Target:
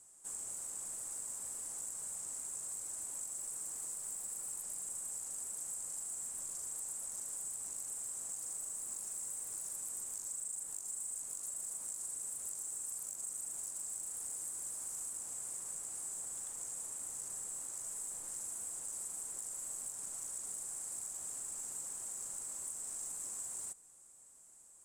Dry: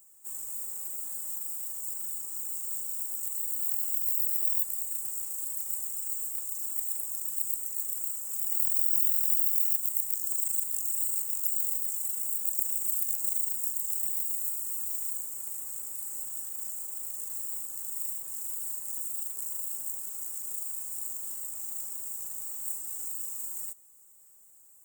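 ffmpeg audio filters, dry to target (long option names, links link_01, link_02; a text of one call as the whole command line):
ffmpeg -i in.wav -af "lowpass=frequency=9600:width=0.5412,lowpass=frequency=9600:width=1.3066,acompressor=threshold=-41dB:ratio=6,asoftclip=type=tanh:threshold=-34dB,volume=3dB" out.wav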